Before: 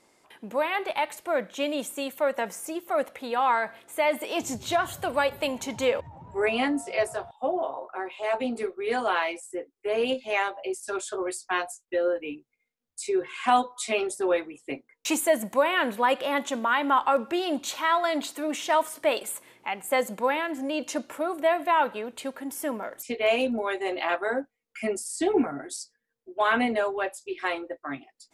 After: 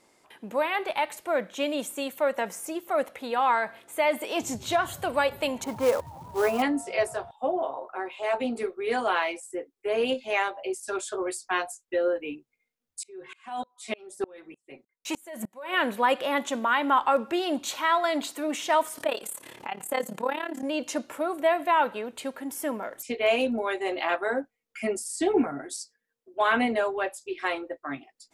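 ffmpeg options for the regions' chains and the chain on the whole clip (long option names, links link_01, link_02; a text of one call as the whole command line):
ffmpeg -i in.wav -filter_complex "[0:a]asettb=1/sr,asplit=3[link_01][link_02][link_03];[link_01]atrim=end=5.644[link_04];[link_02]atrim=start=5.64:end=6.62,asetpts=PTS-STARTPTS,afade=type=in:duration=0.004:curve=qsin,afade=type=out:start_time=0.976:duration=0.004:curve=qsin,lowpass=frequency=1200:width_type=q:width=1.6,aemphasis=mode=production:type=50kf,acrusher=bits=4:mode=log:mix=0:aa=0.000001[link_05];[link_03]atrim=start=6.616[link_06];[link_04][link_05]acrossfade=duration=0.004:curve1=hsin:curve2=qsin[link_07];[link_07][link_06]acrossfade=duration=0.004:curve1=qsin:curve2=hsin,asettb=1/sr,asplit=3[link_08][link_09][link_10];[link_08]atrim=end=13.034[link_11];[link_09]atrim=start=13.03:end=15.74,asetpts=PTS-STARTPTS,afade=type=in:duration=0.004:curve=qsin,afade=type=out:start_time=2.706:duration=0.004:curve=qsin,aecho=1:1:5.3:0.41,atrim=end_sample=119511,acompressor=threshold=-21dB:ratio=5:attack=3.2:release=140:knee=1:detection=peak,aeval=exprs='val(0)*pow(10,-31*if(lt(mod(-3.3*n/s,1),2*abs(-3.3)/1000),1-mod(-3.3*n/s,1)/(2*abs(-3.3)/1000),(mod(-3.3*n/s,1)-2*abs(-3.3)/1000)/(1-2*abs(-3.3)/1000))/20)':channel_layout=same[link_12];[link_10]atrim=start=15.736[link_13];[link_11][link_12]acrossfade=duration=0.004:curve1=hsin:curve2=qsin[link_14];[link_14][link_13]acrossfade=duration=0.004:curve1=qsin:curve2=hsin,asettb=1/sr,asplit=3[link_15][link_16][link_17];[link_15]atrim=end=18.984[link_18];[link_16]atrim=start=18.98:end=20.63,asetpts=PTS-STARTPTS,afade=type=in:duration=0.004:curve=qsin,afade=type=out:start_time=1.646:duration=0.004:curve=qsin,acompressor=mode=upward:threshold=-27dB:ratio=2.5:attack=3.2:release=140:knee=2.83:detection=peak,bandreject=frequency=2200:width=10,tremolo=f=35:d=0.857[link_19];[link_17]atrim=start=20.626[link_20];[link_18][link_19]acrossfade=duration=0.004:curve1=hsin:curve2=qsin[link_21];[link_21][link_20]acrossfade=duration=0.004:curve1=qsin:curve2=hsin,asettb=1/sr,asplit=3[link_22][link_23][link_24];[link_22]atrim=end=25.784[link_25];[link_23]atrim=start=25.78:end=26.34,asetpts=PTS-STARTPTS,afade=type=in:duration=0.004:curve=qsin,afade=type=out:start_time=0.556:duration=0.004:curve=qsin,acrossover=split=130|3000[link_26][link_27][link_28];[link_27]acompressor=threshold=-48dB:ratio=4:attack=3.2:release=140:knee=2.83:detection=peak[link_29];[link_26][link_29][link_28]amix=inputs=3:normalize=0,lowshelf=frequency=170:gain=-8[link_30];[link_24]atrim=start=26.336[link_31];[link_25][link_30]acrossfade=duration=0.004:curve1=hsin:curve2=qsin[link_32];[link_32][link_31]acrossfade=duration=0.004:curve1=qsin:curve2=hsin" out.wav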